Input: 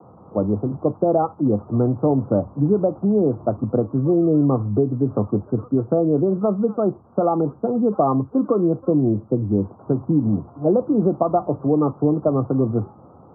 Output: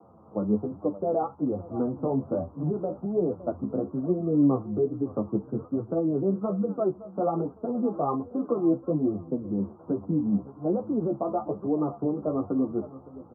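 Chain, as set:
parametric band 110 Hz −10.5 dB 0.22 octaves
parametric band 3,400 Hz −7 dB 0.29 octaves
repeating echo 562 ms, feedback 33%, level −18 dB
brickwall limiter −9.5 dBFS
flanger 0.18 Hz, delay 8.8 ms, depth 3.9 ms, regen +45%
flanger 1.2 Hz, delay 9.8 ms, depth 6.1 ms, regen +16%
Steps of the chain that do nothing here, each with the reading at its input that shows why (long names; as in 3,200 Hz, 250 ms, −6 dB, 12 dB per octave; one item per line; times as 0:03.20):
parametric band 3,400 Hz: nothing at its input above 1,400 Hz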